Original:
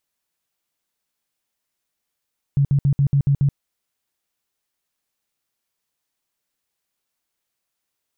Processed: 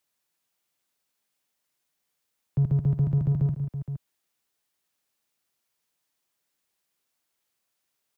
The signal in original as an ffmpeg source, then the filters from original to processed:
-f lavfi -i "aevalsrc='0.224*sin(2*PI*140*mod(t,0.14))*lt(mod(t,0.14),11/140)':d=0.98:s=44100"
-filter_complex "[0:a]highpass=f=81:p=1,acrossover=split=150|310[a][b][c];[b]asoftclip=type=tanh:threshold=-32dB[d];[a][d][c]amix=inputs=3:normalize=0,aecho=1:1:53|152|467:0.2|0.2|0.282"

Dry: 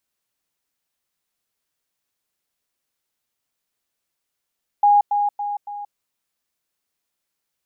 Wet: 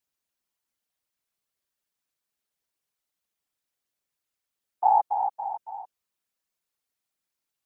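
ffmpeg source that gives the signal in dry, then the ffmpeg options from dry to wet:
-f lavfi -i "aevalsrc='pow(10,(-10.5-6*floor(t/0.28))/20)*sin(2*PI*821*t)*clip(min(mod(t,0.28),0.18-mod(t,0.28))/0.005,0,1)':d=1.12:s=44100"
-af "afftfilt=real='hypot(re,im)*cos(2*PI*random(0))':imag='hypot(re,im)*sin(2*PI*random(1))':win_size=512:overlap=0.75"

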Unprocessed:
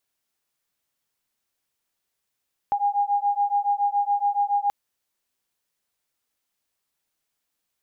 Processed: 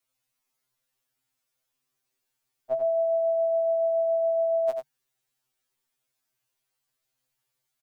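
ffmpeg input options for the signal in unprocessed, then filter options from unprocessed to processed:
-f lavfi -i "aevalsrc='0.0708*(sin(2*PI*810*t)+sin(2*PI*817.1*t))':d=1.98:s=44100"
-filter_complex "[0:a]asplit=2[a][b];[b]aecho=0:1:90:0.501[c];[a][c]amix=inputs=2:normalize=0,afreqshift=-150,afftfilt=real='re*2.45*eq(mod(b,6),0)':imag='im*2.45*eq(mod(b,6),0)':win_size=2048:overlap=0.75"

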